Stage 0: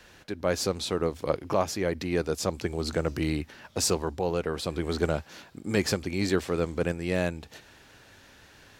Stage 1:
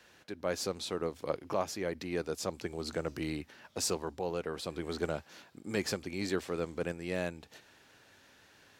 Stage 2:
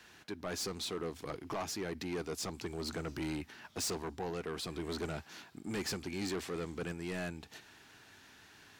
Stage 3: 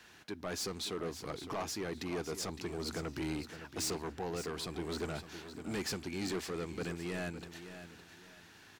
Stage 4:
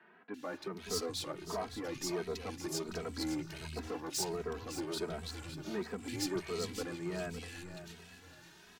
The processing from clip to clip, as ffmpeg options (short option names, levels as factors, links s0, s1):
-af "highpass=f=160:p=1,volume=0.473"
-af "equalizer=f=540:w=4.7:g=-12,asoftclip=type=tanh:threshold=0.0168,volume=1.41"
-af "aecho=1:1:561|1122|1683:0.282|0.0817|0.0237"
-filter_complex "[0:a]acrossover=split=160|2100[s0][s1][s2];[s2]adelay=340[s3];[s0]adelay=430[s4];[s4][s1][s3]amix=inputs=3:normalize=0,asplit=2[s5][s6];[s6]adelay=2.8,afreqshift=1.4[s7];[s5][s7]amix=inputs=2:normalize=1,volume=1.5"